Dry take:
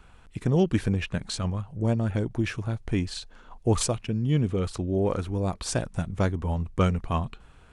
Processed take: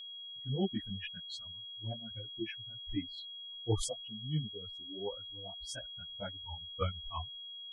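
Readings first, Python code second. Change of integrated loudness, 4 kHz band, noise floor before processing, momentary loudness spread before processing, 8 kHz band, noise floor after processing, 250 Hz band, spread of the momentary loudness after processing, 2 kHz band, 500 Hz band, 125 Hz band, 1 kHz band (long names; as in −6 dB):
−12.0 dB, +1.0 dB, −52 dBFS, 7 LU, −11.5 dB, −47 dBFS, −14.5 dB, 8 LU, −13.0 dB, −13.5 dB, −14.5 dB, −12.0 dB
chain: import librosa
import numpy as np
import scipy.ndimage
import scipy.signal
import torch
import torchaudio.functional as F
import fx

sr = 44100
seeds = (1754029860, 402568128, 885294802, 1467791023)

y = fx.bin_expand(x, sr, power=3.0)
y = fx.chorus_voices(y, sr, voices=4, hz=1.3, base_ms=17, depth_ms=3.0, mix_pct=65)
y = y + 10.0 ** (-40.0 / 20.0) * np.sin(2.0 * np.pi * 3300.0 * np.arange(len(y)) / sr)
y = F.gain(torch.from_numpy(y), -4.0).numpy()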